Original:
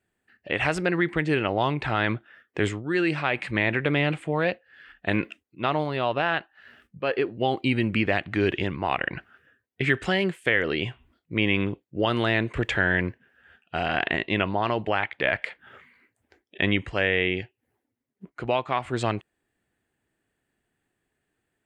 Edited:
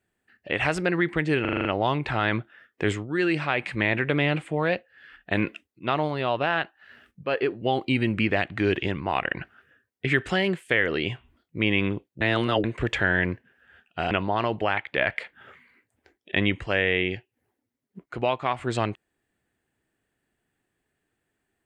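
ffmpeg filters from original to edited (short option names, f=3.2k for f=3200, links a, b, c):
-filter_complex "[0:a]asplit=10[a][b][c][d][e][f][g][h][i][j];[a]atrim=end=1.452[k];[b]atrim=start=1.408:end=1.452[l];[c]atrim=start=1.408:end=1.452[m];[d]atrim=start=1.408:end=1.452[n];[e]atrim=start=1.408:end=1.452[o];[f]atrim=start=1.408:end=1.452[p];[g]atrim=start=1.408:end=11.972[q];[h]atrim=start=11.968:end=12.402,asetpts=PTS-STARTPTS,areverse[r];[i]atrim=start=12.398:end=13.872[s];[j]atrim=start=14.368[t];[k][l]acrossfade=d=0.004:c1=hsin:c2=hsin[u];[u][m]acrossfade=d=0.004:c1=hsin:c2=hsin[v];[v][n]acrossfade=d=0.004:c1=hsin:c2=hsin[w];[w][o]acrossfade=d=0.004:c1=hsin:c2=hsin[x];[x][p]acrossfade=d=0.004:c1=hsin:c2=hsin[y];[y][q]acrossfade=d=0.004:c1=hsin:c2=hsin[z];[z][r]acrossfade=d=0.004:c1=hsin:c2=hsin[aa];[aa][s]acrossfade=d=0.004:c1=hsin:c2=hsin[ab];[ab][t]acrossfade=d=0.004:c1=hsin:c2=hsin"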